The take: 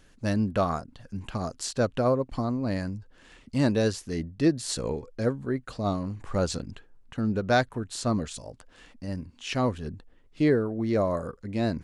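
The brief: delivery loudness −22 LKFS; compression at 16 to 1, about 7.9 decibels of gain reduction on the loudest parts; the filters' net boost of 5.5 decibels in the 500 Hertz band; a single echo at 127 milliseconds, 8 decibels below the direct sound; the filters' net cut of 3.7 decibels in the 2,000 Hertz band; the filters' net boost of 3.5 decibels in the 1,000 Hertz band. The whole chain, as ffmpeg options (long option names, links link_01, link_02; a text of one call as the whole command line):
ffmpeg -i in.wav -af "equalizer=frequency=500:width_type=o:gain=6,equalizer=frequency=1000:width_type=o:gain=4,equalizer=frequency=2000:width_type=o:gain=-8,acompressor=threshold=-22dB:ratio=16,aecho=1:1:127:0.398,volume=7.5dB" out.wav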